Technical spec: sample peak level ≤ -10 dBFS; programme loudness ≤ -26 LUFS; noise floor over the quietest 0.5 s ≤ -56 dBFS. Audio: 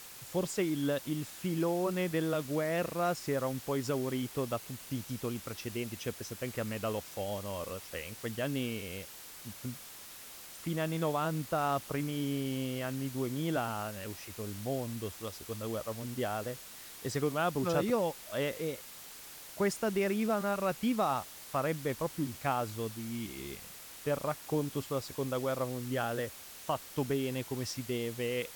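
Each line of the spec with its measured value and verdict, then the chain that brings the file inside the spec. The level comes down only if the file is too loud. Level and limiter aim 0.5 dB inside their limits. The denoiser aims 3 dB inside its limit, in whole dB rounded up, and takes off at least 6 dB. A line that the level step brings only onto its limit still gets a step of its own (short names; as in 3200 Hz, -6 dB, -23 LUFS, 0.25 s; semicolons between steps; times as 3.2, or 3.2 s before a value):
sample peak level -17.5 dBFS: OK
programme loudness -35.0 LUFS: OK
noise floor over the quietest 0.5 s -49 dBFS: fail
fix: denoiser 10 dB, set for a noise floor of -49 dBFS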